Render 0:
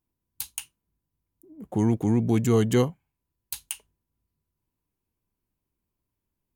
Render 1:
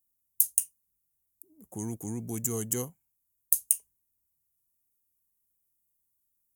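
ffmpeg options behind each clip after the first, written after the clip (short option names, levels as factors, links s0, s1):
-af "aexciter=amount=13.8:drive=4.9:freq=5900,volume=0.211"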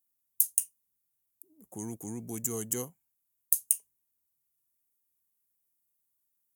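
-af "highpass=f=160:p=1,volume=0.841"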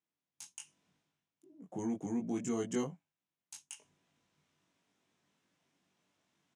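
-filter_complex "[0:a]areverse,acompressor=mode=upward:threshold=0.00501:ratio=2.5,areverse,highpass=130,equalizer=f=170:t=q:w=4:g=8,equalizer=f=280:t=q:w=4:g=4,equalizer=f=670:t=q:w=4:g=4,equalizer=f=4500:t=q:w=4:g=-7,lowpass=f=5000:w=0.5412,lowpass=f=5000:w=1.3066,asplit=2[s0][s1];[s1]adelay=21,volume=0.794[s2];[s0][s2]amix=inputs=2:normalize=0"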